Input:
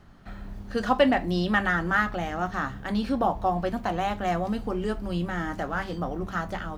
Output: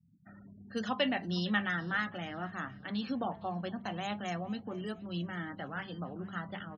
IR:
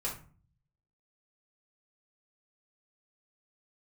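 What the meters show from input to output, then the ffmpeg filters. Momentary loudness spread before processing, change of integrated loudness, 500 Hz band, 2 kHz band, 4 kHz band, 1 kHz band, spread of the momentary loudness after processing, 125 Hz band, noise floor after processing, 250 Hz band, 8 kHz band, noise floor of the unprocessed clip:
9 LU, -9.0 dB, -12.0 dB, -8.0 dB, -3.0 dB, -12.0 dB, 9 LU, -8.0 dB, -55 dBFS, -8.0 dB, -8.5 dB, -40 dBFS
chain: -filter_complex "[0:a]afftfilt=real='re*gte(hypot(re,im),0.00891)':imag='im*gte(hypot(re,im),0.00891)':win_size=1024:overlap=0.75,highpass=f=95:w=0.5412,highpass=f=95:w=1.3066,equalizer=f=170:t=o:w=1.3:g=5.5,bandreject=f=4.6k:w=5.2,asplit=2[a][b];[b]asplit=3[c][d][e];[c]adelay=461,afreqshift=-33,volume=-21.5dB[f];[d]adelay=922,afreqshift=-66,volume=-29.7dB[g];[e]adelay=1383,afreqshift=-99,volume=-37.9dB[h];[f][g][h]amix=inputs=3:normalize=0[i];[a][i]amix=inputs=2:normalize=0,flanger=delay=3:depth=2.1:regen=81:speed=0.39:shape=sinusoidal,acrossover=split=150|1400[j][k][l];[l]crystalizer=i=7:c=0[m];[j][k][m]amix=inputs=3:normalize=0,volume=-8dB"

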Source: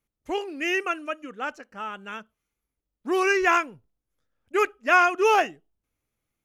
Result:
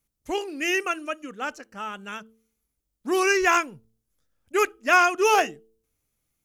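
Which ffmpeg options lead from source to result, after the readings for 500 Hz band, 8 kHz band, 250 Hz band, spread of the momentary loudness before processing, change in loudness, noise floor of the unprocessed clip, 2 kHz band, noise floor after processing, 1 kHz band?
0.0 dB, +8.0 dB, +0.5 dB, 18 LU, +0.5 dB, -85 dBFS, +0.5 dB, -80 dBFS, 0.0 dB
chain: -af "bass=f=250:g=4,treble=f=4k:g=9,bandreject=f=111.5:t=h:w=4,bandreject=f=223:t=h:w=4,bandreject=f=334.5:t=h:w=4,bandreject=f=446:t=h:w=4"

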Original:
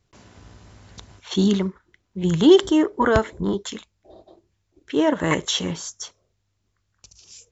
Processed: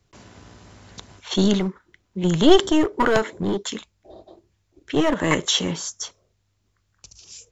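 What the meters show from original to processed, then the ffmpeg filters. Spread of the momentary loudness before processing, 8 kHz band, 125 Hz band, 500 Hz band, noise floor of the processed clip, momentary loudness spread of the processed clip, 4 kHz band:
20 LU, n/a, 0.0 dB, -1.0 dB, -69 dBFS, 18 LU, +3.0 dB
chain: -filter_complex "[0:a]acrossover=split=130|1700[a][b][c];[a]acompressor=threshold=-53dB:ratio=6[d];[b]aeval=exprs='clip(val(0),-1,0.0596)':c=same[e];[d][e][c]amix=inputs=3:normalize=0,volume=3dB"

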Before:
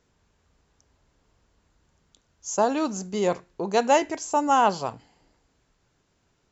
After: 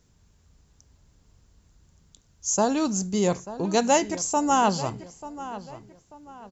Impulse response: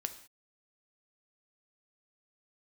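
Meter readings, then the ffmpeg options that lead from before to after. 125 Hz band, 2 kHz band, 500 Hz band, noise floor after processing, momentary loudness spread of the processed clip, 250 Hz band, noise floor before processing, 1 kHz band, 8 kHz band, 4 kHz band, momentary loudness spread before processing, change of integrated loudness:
+6.5 dB, -1.0 dB, -1.0 dB, -62 dBFS, 17 LU, +3.5 dB, -70 dBFS, -1.5 dB, n/a, +2.5 dB, 11 LU, -0.5 dB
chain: -filter_complex "[0:a]bass=f=250:g=11,treble=f=4k:g=10,asplit=2[a][b];[b]adelay=889,lowpass=f=3k:p=1,volume=-14.5dB,asplit=2[c][d];[d]adelay=889,lowpass=f=3k:p=1,volume=0.36,asplit=2[e][f];[f]adelay=889,lowpass=f=3k:p=1,volume=0.36[g];[c][e][g]amix=inputs=3:normalize=0[h];[a][h]amix=inputs=2:normalize=0,volume=-2dB"

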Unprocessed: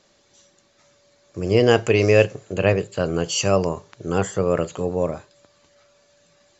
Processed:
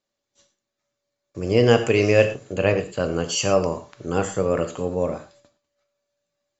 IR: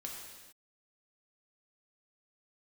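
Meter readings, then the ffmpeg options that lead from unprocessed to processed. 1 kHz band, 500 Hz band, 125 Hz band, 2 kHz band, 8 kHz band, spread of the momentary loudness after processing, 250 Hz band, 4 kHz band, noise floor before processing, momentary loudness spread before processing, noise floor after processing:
-0.5 dB, -1.0 dB, -2.0 dB, -1.0 dB, n/a, 11 LU, -0.5 dB, -1.0 dB, -61 dBFS, 11 LU, -83 dBFS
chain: -filter_complex "[0:a]agate=range=-22dB:threshold=-53dB:ratio=16:detection=peak,asplit=2[a][b];[1:a]atrim=start_sample=2205,afade=t=out:st=0.17:d=0.01,atrim=end_sample=7938[c];[b][c]afir=irnorm=-1:irlink=0,volume=2.5dB[d];[a][d]amix=inputs=2:normalize=0,volume=-6dB"

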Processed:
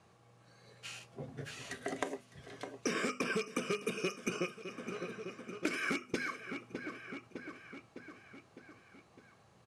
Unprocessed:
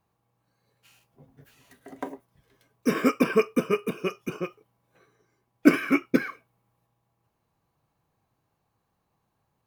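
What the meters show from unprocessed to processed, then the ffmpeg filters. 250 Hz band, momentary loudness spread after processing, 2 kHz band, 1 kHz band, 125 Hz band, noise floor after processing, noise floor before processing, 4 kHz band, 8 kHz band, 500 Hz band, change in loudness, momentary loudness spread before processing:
-14.5 dB, 18 LU, -5.5 dB, -8.0 dB, -7.5 dB, -65 dBFS, -77 dBFS, -1.0 dB, +1.0 dB, -10.5 dB, -14.0 dB, 17 LU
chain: -filter_complex "[0:a]asplit=2[a][b];[b]aeval=exprs='0.1*(abs(mod(val(0)/0.1+3,4)-2)-1)':c=same,volume=-5dB[c];[a][c]amix=inputs=2:normalize=0,acompressor=threshold=-24dB:ratio=6,highpass=100,equalizer=f=150:t=q:w=4:g=-3,equalizer=f=280:t=q:w=4:g=-6,equalizer=f=920:t=q:w=4:g=-8,lowpass=f=8.9k:w=0.5412,lowpass=f=8.9k:w=1.3066,bandreject=f=50:t=h:w=6,bandreject=f=100:t=h:w=6,bandreject=f=150:t=h:w=6,bandreject=f=200:t=h:w=6,bandreject=f=250:t=h:w=6,aecho=1:1:607|1214|1821|2428|3035:0.1|0.058|0.0336|0.0195|0.0113,acrossover=split=2000|5500[d][e][f];[d]acompressor=threshold=-47dB:ratio=4[g];[e]acompressor=threshold=-54dB:ratio=4[h];[f]acompressor=threshold=-58dB:ratio=4[i];[g][h][i]amix=inputs=3:normalize=0,volume=10dB"

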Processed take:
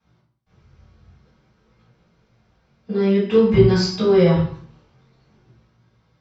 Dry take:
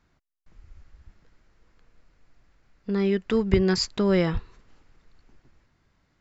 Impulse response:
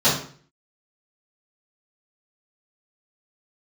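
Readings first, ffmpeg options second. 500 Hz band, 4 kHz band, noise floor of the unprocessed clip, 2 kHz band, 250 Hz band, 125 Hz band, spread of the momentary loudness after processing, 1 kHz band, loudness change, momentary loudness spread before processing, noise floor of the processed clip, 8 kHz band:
+8.5 dB, +3.0 dB, -70 dBFS, +2.0 dB, +6.0 dB, +9.0 dB, 9 LU, +6.0 dB, +7.0 dB, 10 LU, -65 dBFS, n/a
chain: -filter_complex "[0:a]flanger=delay=17:depth=5.5:speed=0.52[a];[1:a]atrim=start_sample=2205,asetrate=37485,aresample=44100[b];[a][b]afir=irnorm=-1:irlink=0,volume=-13dB"

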